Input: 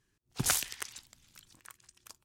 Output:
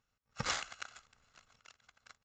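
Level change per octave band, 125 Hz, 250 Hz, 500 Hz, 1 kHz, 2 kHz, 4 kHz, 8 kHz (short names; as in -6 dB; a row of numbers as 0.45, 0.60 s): -8.0, -8.0, -1.5, 0.0, -2.5, -4.0, -12.5 dB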